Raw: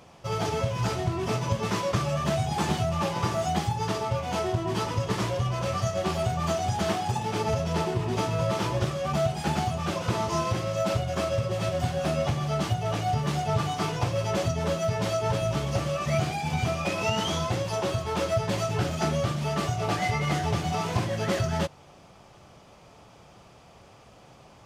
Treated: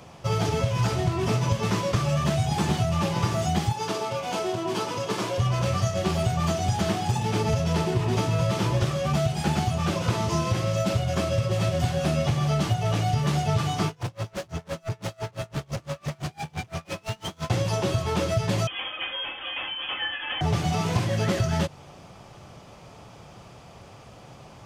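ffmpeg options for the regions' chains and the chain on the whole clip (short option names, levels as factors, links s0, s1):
-filter_complex "[0:a]asettb=1/sr,asplit=3[s0][s1][s2];[s0]atrim=end=3.724[s3];[s1]atrim=start=3.72:end=5.38,asetpts=PTS-STARTPTS,afade=t=in:d=0.004:c=qsin,afade=t=out:st=1.656:d=0.004:c=qsin,highpass=300,bandreject=f=1900:w=12[s4];[s2]atrim=start=5.376[s5];[s3][s4]acrossfade=d=0.004:c1=hsin:c2=qsin[s6];[s6][s5]acrossfade=d=0.004:c1=qsin:c2=hsin,asettb=1/sr,asplit=3[s7][s8][s9];[s7]atrim=end=13.884[s10];[s8]atrim=start=13.88:end=17.5,asetpts=PTS-STARTPTS,afade=t=in:d=0.004:c=qsin,afade=t=out:st=3.616:d=0.004:c=qsin,asoftclip=type=hard:threshold=0.0282,aeval=exprs='val(0)*pow(10,-32*(0.5-0.5*cos(2*PI*5.9*n/s))/20)':c=same[s11];[s9]atrim=start=17.496[s12];[s10][s11]acrossfade=d=0.004:c1=hsin:c2=qsin[s13];[s13][s12]acrossfade=d=0.004:c1=qsin:c2=hsin,asettb=1/sr,asplit=3[s14][s15][s16];[s14]atrim=end=18.674[s17];[s15]atrim=start=18.67:end=20.41,asetpts=PTS-STARTPTS,afade=t=in:d=0.004:c=qsin,afade=t=out:st=1.736:d=0.004:c=qsin,highpass=f=500:w=0.5412,highpass=f=500:w=1.3066,aecho=1:1:4:0.54,atrim=end_sample=76734,lowpass=f=3200:t=q:w=0.5098,lowpass=f=3200:t=q:w=0.6013,lowpass=f=3200:t=q:w=0.9,lowpass=f=3200:t=q:w=2.563,afreqshift=-3800[s18];[s16]atrim=start=20.406[s19];[s17][s18]acrossfade=d=0.004:c1=hsin:c2=qsin[s20];[s20][s19]acrossfade=d=0.004:c1=qsin:c2=hsin,equalizer=f=120:w=1.2:g=4,acrossover=split=450|1700[s21][s22][s23];[s21]acompressor=threshold=0.0501:ratio=4[s24];[s22]acompressor=threshold=0.0158:ratio=4[s25];[s23]acompressor=threshold=0.0126:ratio=4[s26];[s24][s25][s26]amix=inputs=3:normalize=0,volume=1.68"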